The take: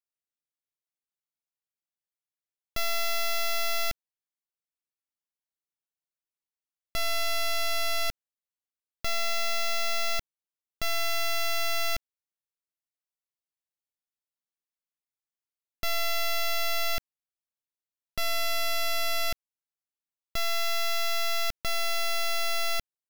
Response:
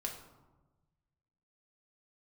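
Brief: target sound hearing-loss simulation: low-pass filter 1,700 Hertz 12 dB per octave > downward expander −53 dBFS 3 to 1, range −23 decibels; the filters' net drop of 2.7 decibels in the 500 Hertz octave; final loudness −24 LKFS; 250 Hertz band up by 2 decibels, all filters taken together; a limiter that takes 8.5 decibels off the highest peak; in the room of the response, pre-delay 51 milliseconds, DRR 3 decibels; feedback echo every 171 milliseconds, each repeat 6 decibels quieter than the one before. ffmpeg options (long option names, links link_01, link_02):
-filter_complex "[0:a]equalizer=frequency=250:width_type=o:gain=3.5,equalizer=frequency=500:width_type=o:gain=-5,alimiter=level_in=7.5dB:limit=-24dB:level=0:latency=1,volume=-7.5dB,aecho=1:1:171|342|513|684|855|1026:0.501|0.251|0.125|0.0626|0.0313|0.0157,asplit=2[link_01][link_02];[1:a]atrim=start_sample=2205,adelay=51[link_03];[link_02][link_03]afir=irnorm=-1:irlink=0,volume=-3dB[link_04];[link_01][link_04]amix=inputs=2:normalize=0,lowpass=1700,agate=range=-23dB:threshold=-53dB:ratio=3,volume=19.5dB"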